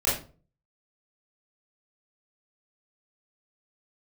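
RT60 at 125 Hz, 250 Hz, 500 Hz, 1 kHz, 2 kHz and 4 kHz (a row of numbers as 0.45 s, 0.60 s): 0.60 s, 0.50 s, 0.40 s, 0.35 s, 0.30 s, 0.25 s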